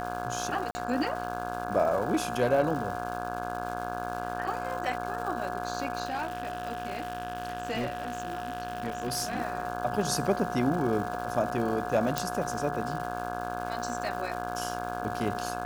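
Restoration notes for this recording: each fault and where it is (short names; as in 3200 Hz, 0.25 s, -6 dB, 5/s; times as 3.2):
buzz 60 Hz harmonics 28 -37 dBFS
crackle 420/s -37 dBFS
tone 720 Hz -36 dBFS
0.71–0.75 gap 40 ms
6.05–9.4 clipped -26.5 dBFS
12.18 pop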